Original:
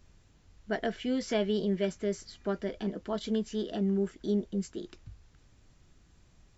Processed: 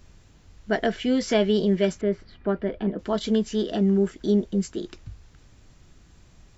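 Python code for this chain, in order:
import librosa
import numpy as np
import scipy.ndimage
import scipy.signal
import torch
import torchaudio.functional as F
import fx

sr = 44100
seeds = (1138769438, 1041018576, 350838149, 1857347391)

y = fx.air_absorb(x, sr, metres=410.0, at=(2.01, 2.99))
y = y * 10.0 ** (8.0 / 20.0)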